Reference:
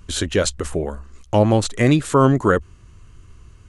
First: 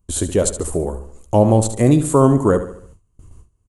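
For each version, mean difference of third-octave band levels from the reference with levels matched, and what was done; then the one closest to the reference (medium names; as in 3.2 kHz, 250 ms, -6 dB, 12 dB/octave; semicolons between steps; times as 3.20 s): 5.5 dB: treble shelf 4 kHz +7 dB; on a send: feedback delay 72 ms, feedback 46%, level -11.5 dB; on the sum: gate with hold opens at -33 dBFS; high-order bell 2.8 kHz -13 dB 2.5 oct; trim +2 dB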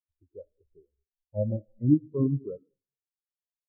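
16.5 dB: low-pass that closes with the level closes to 1.2 kHz, closed at -10.5 dBFS; low-pass 1.7 kHz 12 dB/octave; algorithmic reverb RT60 1.5 s, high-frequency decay 0.35×, pre-delay 20 ms, DRR 6.5 dB; spectral contrast expander 4:1; trim -7 dB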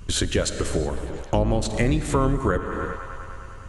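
9.0 dB: octave divider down 2 oct, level 0 dB; on a send: feedback echo behind a band-pass 101 ms, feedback 82%, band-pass 1.4 kHz, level -17 dB; on the sum: gated-style reverb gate 400 ms flat, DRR 11.5 dB; compression 3:1, threshold -25 dBFS, peak gain reduction 13 dB; trim +3.5 dB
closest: first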